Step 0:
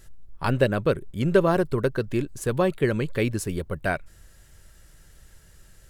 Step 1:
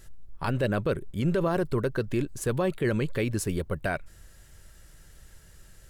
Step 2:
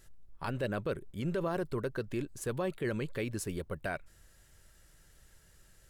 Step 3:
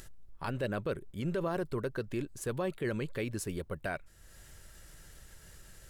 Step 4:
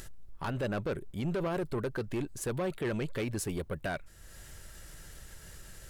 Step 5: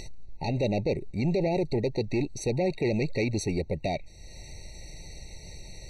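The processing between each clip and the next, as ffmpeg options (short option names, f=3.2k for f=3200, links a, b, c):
-af "alimiter=limit=-18dB:level=0:latency=1:release=24"
-af "lowshelf=f=190:g=-4,volume=-6.5dB"
-af "acompressor=mode=upward:threshold=-43dB:ratio=2.5"
-af "asoftclip=type=tanh:threshold=-32dB,volume=4.5dB"
-af "lowpass=f=5k:t=q:w=2.6,afftfilt=real='re*eq(mod(floor(b*sr/1024/930),2),0)':imag='im*eq(mod(floor(b*sr/1024/930),2),0)':win_size=1024:overlap=0.75,volume=6.5dB"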